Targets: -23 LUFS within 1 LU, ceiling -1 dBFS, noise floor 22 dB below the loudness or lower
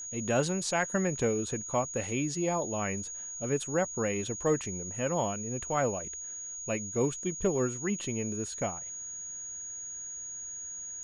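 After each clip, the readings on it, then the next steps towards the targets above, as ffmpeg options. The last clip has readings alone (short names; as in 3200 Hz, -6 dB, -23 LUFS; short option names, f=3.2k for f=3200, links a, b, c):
steady tone 6700 Hz; tone level -38 dBFS; loudness -32.0 LUFS; peak -15.0 dBFS; loudness target -23.0 LUFS
-> -af "bandreject=f=6.7k:w=30"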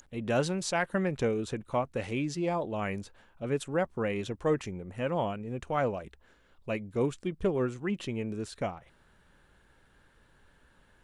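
steady tone none; loudness -32.5 LUFS; peak -15.5 dBFS; loudness target -23.0 LUFS
-> -af "volume=9.5dB"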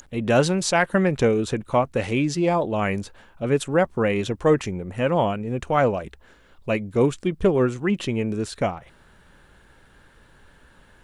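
loudness -23.0 LUFS; peak -6.0 dBFS; noise floor -54 dBFS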